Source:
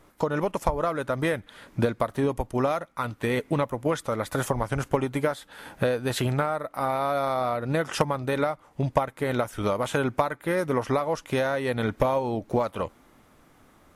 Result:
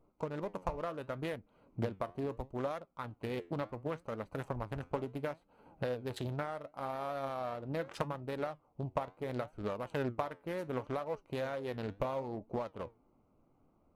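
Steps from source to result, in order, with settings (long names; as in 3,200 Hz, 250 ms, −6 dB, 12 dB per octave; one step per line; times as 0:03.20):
adaptive Wiener filter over 25 samples
flanger 0.72 Hz, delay 4 ms, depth 7.8 ms, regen +79%
highs frequency-modulated by the lows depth 0.4 ms
level −7 dB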